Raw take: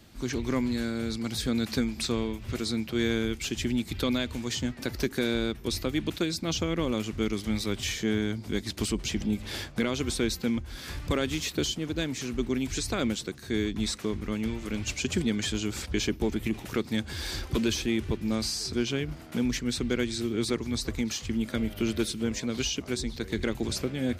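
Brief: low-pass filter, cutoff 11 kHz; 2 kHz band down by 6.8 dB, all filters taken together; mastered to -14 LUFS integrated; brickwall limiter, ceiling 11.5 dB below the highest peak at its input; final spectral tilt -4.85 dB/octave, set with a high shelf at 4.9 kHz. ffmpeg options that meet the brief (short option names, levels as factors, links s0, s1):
-af "lowpass=11000,equalizer=f=2000:t=o:g=-7.5,highshelf=f=4900:g=-7.5,volume=15,alimiter=limit=0.596:level=0:latency=1"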